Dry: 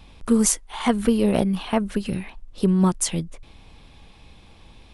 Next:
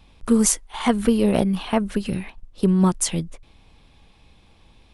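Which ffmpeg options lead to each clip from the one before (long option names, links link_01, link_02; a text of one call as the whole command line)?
ffmpeg -i in.wav -af "agate=range=-6dB:threshold=-36dB:ratio=16:detection=peak,volume=1dB" out.wav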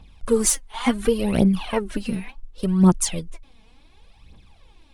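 ffmpeg -i in.wav -af "aphaser=in_gain=1:out_gain=1:delay=4.7:decay=0.66:speed=0.69:type=triangular,volume=-3dB" out.wav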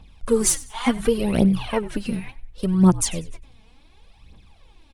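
ffmpeg -i in.wav -filter_complex "[0:a]asplit=4[link_01][link_02][link_03][link_04];[link_02]adelay=96,afreqshift=-65,volume=-19dB[link_05];[link_03]adelay=192,afreqshift=-130,volume=-29.2dB[link_06];[link_04]adelay=288,afreqshift=-195,volume=-39.3dB[link_07];[link_01][link_05][link_06][link_07]amix=inputs=4:normalize=0" out.wav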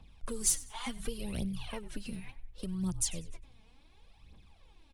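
ffmpeg -i in.wav -filter_complex "[0:a]acrossover=split=120|3000[link_01][link_02][link_03];[link_02]acompressor=threshold=-34dB:ratio=4[link_04];[link_01][link_04][link_03]amix=inputs=3:normalize=0,volume=-8dB" out.wav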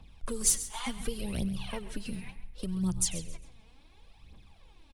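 ffmpeg -i in.wav -af "aecho=1:1:134|268|402:0.188|0.0527|0.0148,volume=3dB" out.wav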